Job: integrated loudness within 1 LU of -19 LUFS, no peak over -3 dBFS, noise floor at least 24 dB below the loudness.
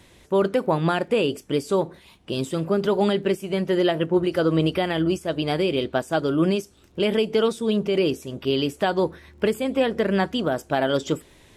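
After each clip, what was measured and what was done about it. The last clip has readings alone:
ticks 22/s; loudness -23.5 LUFS; peak -9.0 dBFS; loudness target -19.0 LUFS
-> de-click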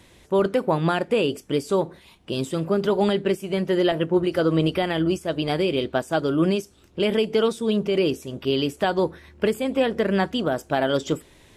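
ticks 0/s; loudness -23.5 LUFS; peak -9.0 dBFS; loudness target -19.0 LUFS
-> gain +4.5 dB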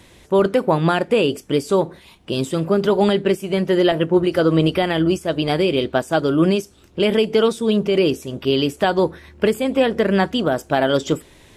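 loudness -19.0 LUFS; peak -4.5 dBFS; noise floor -49 dBFS

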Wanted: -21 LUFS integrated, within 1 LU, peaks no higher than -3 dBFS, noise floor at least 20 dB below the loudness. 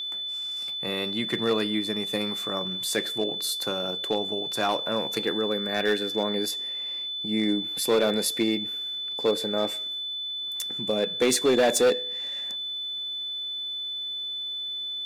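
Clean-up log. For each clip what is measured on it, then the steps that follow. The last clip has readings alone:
clipped 0.7%; flat tops at -16.0 dBFS; steady tone 3500 Hz; tone level -30 dBFS; loudness -26.5 LUFS; peak -16.0 dBFS; loudness target -21.0 LUFS
-> clip repair -16 dBFS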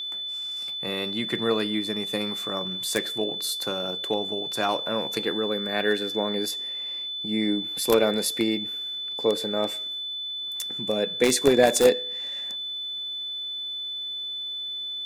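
clipped 0.0%; steady tone 3500 Hz; tone level -30 dBFS
-> notch 3500 Hz, Q 30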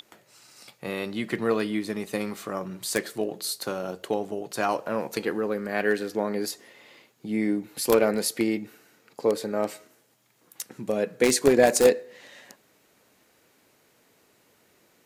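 steady tone none; loudness -26.5 LUFS; peak -6.5 dBFS; loudness target -21.0 LUFS
-> gain +5.5 dB; limiter -3 dBFS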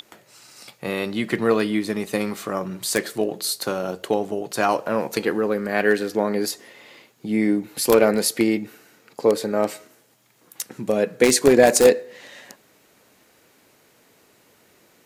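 loudness -21.5 LUFS; peak -3.0 dBFS; noise floor -58 dBFS

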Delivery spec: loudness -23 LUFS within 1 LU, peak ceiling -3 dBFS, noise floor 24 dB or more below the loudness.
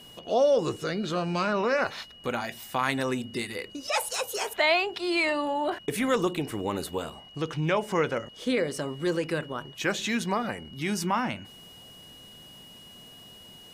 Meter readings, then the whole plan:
steady tone 2900 Hz; tone level -48 dBFS; loudness -28.5 LUFS; peak -11.5 dBFS; loudness target -23.0 LUFS
-> notch 2900 Hz, Q 30; gain +5.5 dB

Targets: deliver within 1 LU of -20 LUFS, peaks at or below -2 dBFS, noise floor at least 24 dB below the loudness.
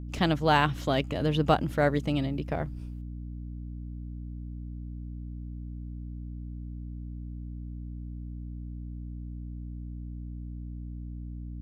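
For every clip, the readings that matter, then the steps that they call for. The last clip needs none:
hum 60 Hz; harmonics up to 300 Hz; hum level -36 dBFS; loudness -32.5 LUFS; peak -9.5 dBFS; loudness target -20.0 LUFS
-> de-hum 60 Hz, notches 5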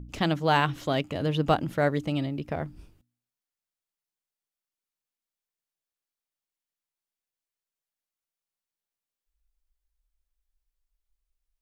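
hum none; loudness -27.0 LUFS; peak -10.5 dBFS; loudness target -20.0 LUFS
-> gain +7 dB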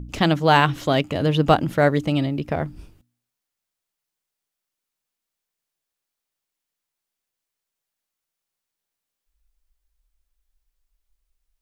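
loudness -20.0 LUFS; peak -3.5 dBFS; noise floor -84 dBFS

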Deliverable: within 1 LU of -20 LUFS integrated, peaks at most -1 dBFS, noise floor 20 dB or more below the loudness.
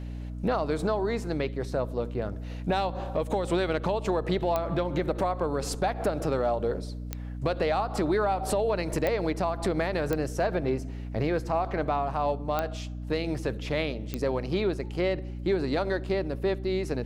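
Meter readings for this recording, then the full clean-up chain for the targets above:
clicks 6; hum 60 Hz; harmonics up to 300 Hz; hum level -34 dBFS; loudness -29.0 LUFS; peak -13.0 dBFS; loudness target -20.0 LUFS
-> de-click; notches 60/120/180/240/300 Hz; gain +9 dB

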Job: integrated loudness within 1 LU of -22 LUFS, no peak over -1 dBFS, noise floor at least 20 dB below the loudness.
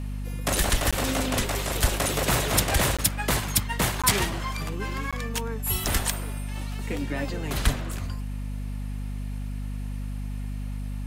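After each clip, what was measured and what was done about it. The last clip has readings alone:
dropouts 4; longest dropout 16 ms; hum 50 Hz; harmonics up to 250 Hz; hum level -29 dBFS; loudness -27.0 LUFS; peak -8.0 dBFS; loudness target -22.0 LUFS
-> interpolate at 0.91/2.97/4.02/5.11, 16 ms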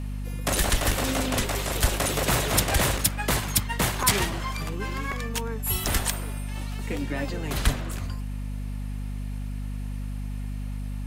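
dropouts 0; hum 50 Hz; harmonics up to 250 Hz; hum level -29 dBFS
-> de-hum 50 Hz, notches 5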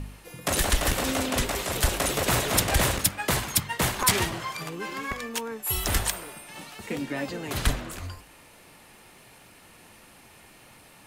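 hum none; loudness -26.5 LUFS; peak -9.0 dBFS; loudness target -22.0 LUFS
-> gain +4.5 dB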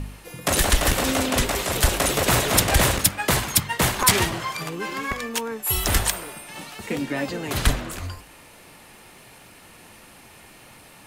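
loudness -22.0 LUFS; peak -4.5 dBFS; noise floor -48 dBFS

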